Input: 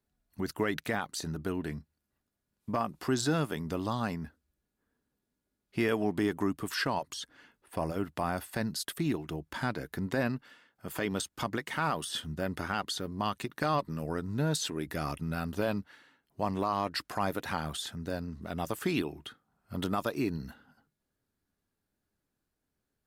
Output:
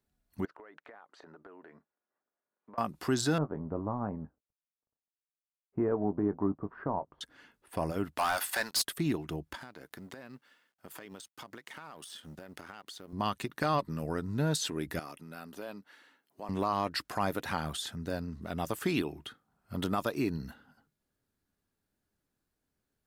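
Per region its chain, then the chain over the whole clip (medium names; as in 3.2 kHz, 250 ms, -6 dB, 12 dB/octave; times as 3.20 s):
0.45–2.78 s: Butterworth band-pass 850 Hz, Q 0.69 + compression 10:1, threshold -48 dBFS
3.38–7.21 s: companding laws mixed up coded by A + low-pass 1.1 kHz 24 dB/octave + doubling 20 ms -12 dB
8.18–8.82 s: high-pass 840 Hz + waveshaping leveller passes 3
9.55–13.13 s: companding laws mixed up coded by A + high-pass 250 Hz 6 dB/octave + compression 12:1, threshold -42 dBFS
14.99–16.49 s: high-pass 250 Hz + compression 1.5:1, threshold -56 dBFS + treble shelf 11 kHz +4.5 dB
whole clip: none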